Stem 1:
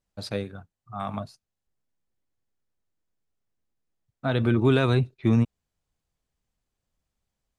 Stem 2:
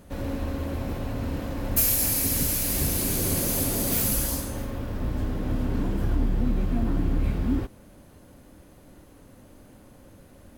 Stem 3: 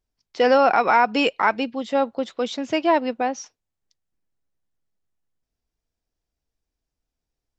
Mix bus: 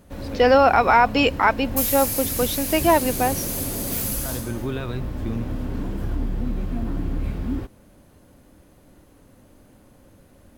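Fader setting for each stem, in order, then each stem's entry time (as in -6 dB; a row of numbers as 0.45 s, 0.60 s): -8.5 dB, -1.5 dB, +1.5 dB; 0.00 s, 0.00 s, 0.00 s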